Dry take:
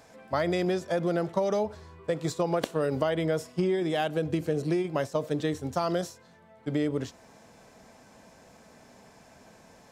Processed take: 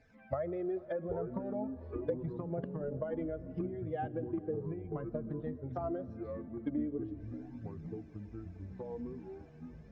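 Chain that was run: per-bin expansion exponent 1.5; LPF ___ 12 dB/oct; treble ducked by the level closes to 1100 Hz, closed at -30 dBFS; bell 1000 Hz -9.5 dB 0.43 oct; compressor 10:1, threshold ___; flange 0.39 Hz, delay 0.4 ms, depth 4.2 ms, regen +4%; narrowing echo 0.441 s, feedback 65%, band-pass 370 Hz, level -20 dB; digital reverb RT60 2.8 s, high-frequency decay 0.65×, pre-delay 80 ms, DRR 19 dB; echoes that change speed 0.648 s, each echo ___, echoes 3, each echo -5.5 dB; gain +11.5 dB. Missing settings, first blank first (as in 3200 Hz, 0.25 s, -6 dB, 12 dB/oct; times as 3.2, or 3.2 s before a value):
2400 Hz, -43 dBFS, -6 st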